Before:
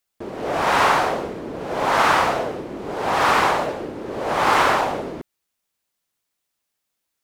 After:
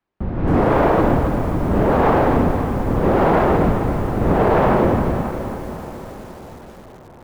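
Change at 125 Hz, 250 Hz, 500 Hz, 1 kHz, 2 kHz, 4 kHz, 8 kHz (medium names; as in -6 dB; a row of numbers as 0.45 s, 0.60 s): +16.5 dB, +12.0 dB, +6.5 dB, -1.0 dB, -5.5 dB, -12.0 dB, under -10 dB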